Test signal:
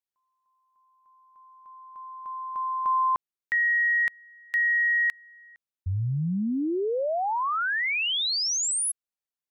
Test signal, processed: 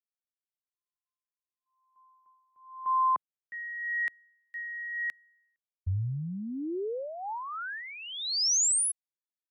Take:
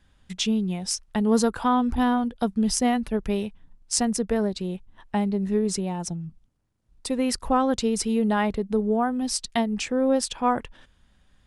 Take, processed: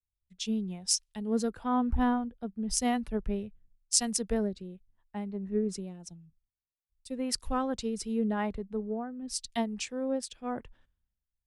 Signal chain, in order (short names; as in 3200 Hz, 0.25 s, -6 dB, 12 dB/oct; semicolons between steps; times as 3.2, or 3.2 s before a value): rotary speaker horn 0.9 Hz; three-band expander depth 100%; gain -7 dB